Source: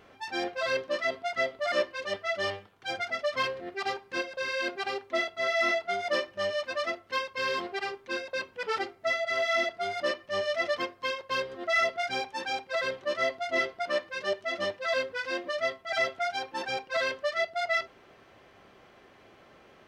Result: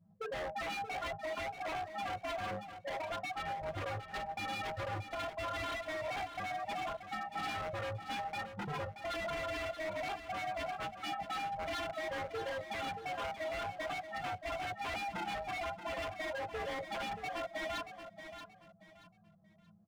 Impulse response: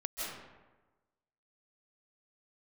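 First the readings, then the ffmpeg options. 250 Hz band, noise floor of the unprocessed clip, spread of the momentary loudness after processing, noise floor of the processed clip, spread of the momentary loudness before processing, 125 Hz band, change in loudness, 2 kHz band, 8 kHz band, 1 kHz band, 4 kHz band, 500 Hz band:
−5.5 dB, −57 dBFS, 3 LU, −63 dBFS, 7 LU, +6.5 dB, −9.0 dB, −11.0 dB, −7.5 dB, −4.0 dB, −10.0 dB, −10.0 dB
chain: -filter_complex "[0:a]afftfilt=real='real(if(between(b,1,1008),(2*floor((b-1)/24)+1)*24-b,b),0)':imag='imag(if(between(b,1,1008),(2*floor((b-1)/24)+1)*24-b,b),0)*if(between(b,1,1008),-1,1)':win_size=2048:overlap=0.75,lowpass=1300,aemphasis=mode=reproduction:type=75fm,anlmdn=0.631,firequalizer=gain_entry='entry(110,0);entry(160,-18);entry(300,-3);entry(430,2)':delay=0.05:min_phase=1,asplit=2[link_01][link_02];[link_02]acompressor=threshold=-37dB:ratio=16,volume=0dB[link_03];[link_01][link_03]amix=inputs=2:normalize=0,alimiter=level_in=3dB:limit=-24dB:level=0:latency=1:release=187,volume=-3dB,flanger=delay=16:depth=3.7:speed=0.56,asoftclip=type=tanh:threshold=-30dB,afreqshift=-220,aeval=exprs='0.0119*(abs(mod(val(0)/0.0119+3,4)-2)-1)':channel_layout=same,asplit=2[link_04][link_05];[link_05]aecho=0:1:629|1258|1887:0.316|0.0885|0.0248[link_06];[link_04][link_06]amix=inputs=2:normalize=0,volume=4.5dB"

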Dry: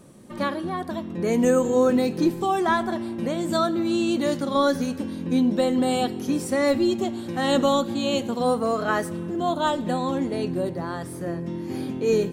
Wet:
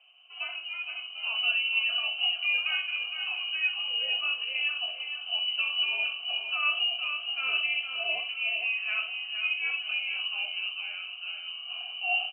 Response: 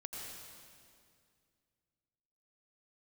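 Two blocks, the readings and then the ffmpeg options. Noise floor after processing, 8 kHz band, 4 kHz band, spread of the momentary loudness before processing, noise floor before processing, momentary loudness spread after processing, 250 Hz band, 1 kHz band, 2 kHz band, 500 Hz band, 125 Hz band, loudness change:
−42 dBFS, below −40 dB, +8.5 dB, 10 LU, −35 dBFS, 10 LU, below −40 dB, −16.5 dB, +6.0 dB, −27.5 dB, below −40 dB, −4.0 dB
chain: -filter_complex "[0:a]flanger=delay=6.6:depth=8.6:regen=70:speed=0.81:shape=triangular,asplit=2[link_01][link_02];[link_02]aecho=0:1:463|926|1389|1852:0.398|0.143|0.0516|0.0186[link_03];[link_01][link_03]amix=inputs=2:normalize=0,lowpass=frequency=2700:width_type=q:width=0.5098,lowpass=frequency=2700:width_type=q:width=0.6013,lowpass=frequency=2700:width_type=q:width=0.9,lowpass=frequency=2700:width_type=q:width=2.563,afreqshift=-3200,asplit=3[link_04][link_05][link_06];[link_04]bandpass=frequency=730:width_type=q:width=8,volume=0dB[link_07];[link_05]bandpass=frequency=1090:width_type=q:width=8,volume=-6dB[link_08];[link_06]bandpass=frequency=2440:width_type=q:width=8,volume=-9dB[link_09];[link_07][link_08][link_09]amix=inputs=3:normalize=0,asplit=2[link_10][link_11];[link_11]aecho=0:1:21|64:0.398|0.299[link_12];[link_10][link_12]amix=inputs=2:normalize=0,volume=8.5dB"

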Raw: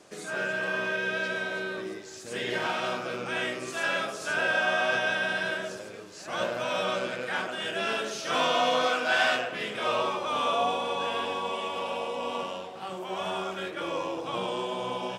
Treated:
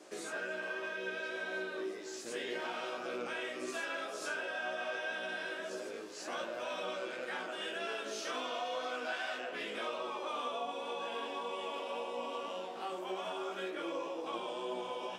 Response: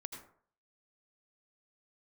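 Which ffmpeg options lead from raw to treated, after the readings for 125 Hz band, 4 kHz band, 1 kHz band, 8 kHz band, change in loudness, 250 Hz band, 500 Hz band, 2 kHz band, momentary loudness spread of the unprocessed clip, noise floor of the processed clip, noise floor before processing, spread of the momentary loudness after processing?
below −15 dB, −10.5 dB, −10.5 dB, −7.5 dB, −10.0 dB, −8.0 dB, −8.5 dB, −11.0 dB, 10 LU, −44 dBFS, −42 dBFS, 3 LU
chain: -af "lowshelf=frequency=190:width_type=q:width=1.5:gain=-13.5,acompressor=threshold=-35dB:ratio=5,flanger=delay=16:depth=2.2:speed=1.9,volume=1dB"

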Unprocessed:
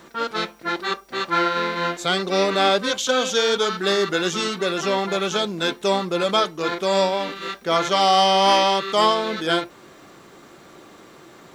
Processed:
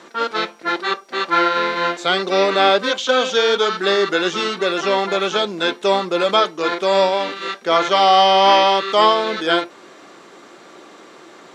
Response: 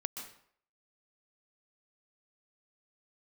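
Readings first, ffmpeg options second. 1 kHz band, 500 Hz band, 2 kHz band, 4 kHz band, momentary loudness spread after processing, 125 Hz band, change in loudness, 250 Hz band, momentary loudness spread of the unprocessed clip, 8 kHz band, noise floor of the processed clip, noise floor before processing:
+4.5 dB, +4.0 dB, +4.5 dB, +3.0 dB, 10 LU, −3.0 dB, +3.5 dB, +1.5 dB, 10 LU, −3.5 dB, −44 dBFS, −47 dBFS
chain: -filter_complex "[0:a]acrossover=split=4400[link_01][link_02];[link_02]acompressor=threshold=-39dB:ratio=4:attack=1:release=60[link_03];[link_01][link_03]amix=inputs=2:normalize=0,highpass=270,lowpass=7900,volume=4.5dB"

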